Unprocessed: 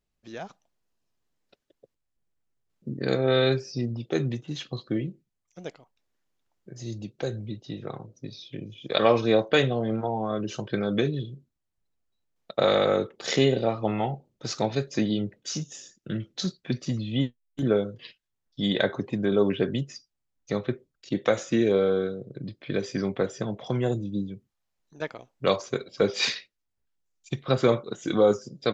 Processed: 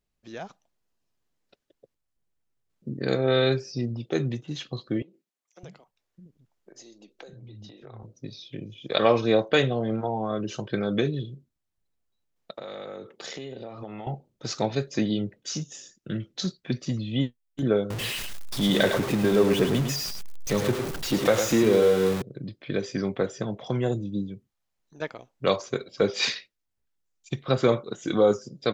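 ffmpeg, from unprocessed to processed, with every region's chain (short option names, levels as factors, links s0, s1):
-filter_complex "[0:a]asettb=1/sr,asplit=3[s0][s1][s2];[s0]atrim=end=5.024[s3];[s1]atrim=start=5.02:end=8.03,asetpts=PTS-STARTPTS,afade=t=in:d=0.004:c=qsin,afade=t=out:st=3.006:d=0.004:c=qsin,acompressor=threshold=0.0112:ratio=12:attack=3.2:release=140:knee=1:detection=peak,acrossover=split=260[s4][s5];[s4]adelay=610[s6];[s6][s5]amix=inputs=2:normalize=0,atrim=end_sample=132741[s7];[s2]atrim=start=8.026[s8];[s3][s7]acrossfade=d=0.004:c1=hsin:c2=qsin[s9];[s9][s8]acrossfade=d=0.004:c1=qsin:c2=hsin,asettb=1/sr,asplit=3[s10][s11][s12];[s10]atrim=end=12.514[s13];[s11]atrim=start=12.51:end=14.07,asetpts=PTS-STARTPTS,afade=t=in:d=0.004:c=qsin,afade=t=out:st=1.556:d=0.004:c=qsin,highpass=110,acompressor=threshold=0.02:ratio=10:attack=3.2:release=140:knee=1:detection=peak[s14];[s12]atrim=start=14.066[s15];[s13][s14]acrossfade=d=0.004:c1=hsin:c2=qsin[s16];[s16][s15]acrossfade=d=0.004:c1=qsin:c2=hsin,asettb=1/sr,asplit=3[s17][s18][s19];[s17]atrim=end=17.904[s20];[s18]atrim=start=17.9:end=22.22,asetpts=PTS-STARTPTS,afade=t=in:d=0.004:c=qsin,afade=t=out:st=4.316:d=0.004:c=qsin,aeval=exprs='val(0)+0.5*0.0473*sgn(val(0))':c=same,aecho=1:1:106:0.447,atrim=end_sample=190512[s21];[s19]atrim=start=22.216[s22];[s20][s21]acrossfade=d=0.004:c1=hsin:c2=qsin[s23];[s23][s22]acrossfade=d=0.004:c1=qsin:c2=hsin"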